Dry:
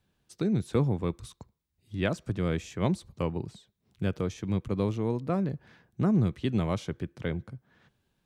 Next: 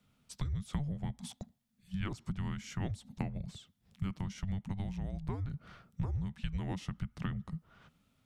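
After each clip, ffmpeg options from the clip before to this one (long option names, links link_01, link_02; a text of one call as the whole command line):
ffmpeg -i in.wav -af "acompressor=threshold=-35dB:ratio=10,afreqshift=-290,volume=2.5dB" out.wav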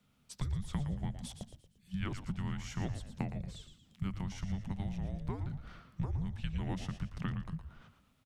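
ffmpeg -i in.wav -filter_complex "[0:a]bandreject=frequency=50:width_type=h:width=6,bandreject=frequency=100:width_type=h:width=6,asplit=5[link_01][link_02][link_03][link_04][link_05];[link_02]adelay=115,afreqshift=-88,volume=-9dB[link_06];[link_03]adelay=230,afreqshift=-176,volume=-17dB[link_07];[link_04]adelay=345,afreqshift=-264,volume=-24.9dB[link_08];[link_05]adelay=460,afreqshift=-352,volume=-32.9dB[link_09];[link_01][link_06][link_07][link_08][link_09]amix=inputs=5:normalize=0" out.wav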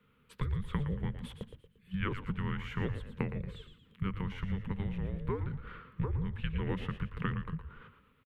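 ffmpeg -i in.wav -af "firequalizer=gain_entry='entry(320,0);entry(460,12);entry(670,-12);entry(1000,5);entry(1600,6);entry(3000,1);entry(5500,-21);entry(12000,-6)':delay=0.05:min_phase=1,volume=2dB" out.wav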